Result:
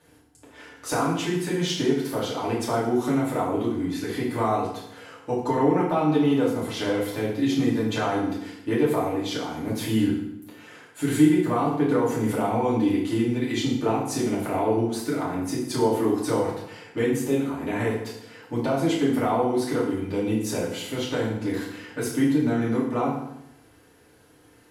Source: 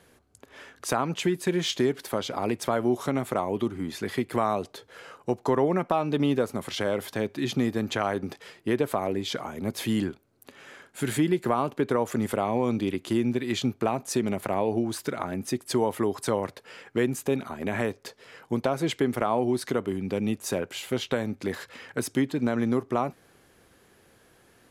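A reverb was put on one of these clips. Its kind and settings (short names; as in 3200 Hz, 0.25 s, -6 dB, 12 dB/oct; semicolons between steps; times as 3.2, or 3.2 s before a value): FDN reverb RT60 0.8 s, low-frequency decay 1.25×, high-frequency decay 0.85×, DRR -7.5 dB; gain -6.5 dB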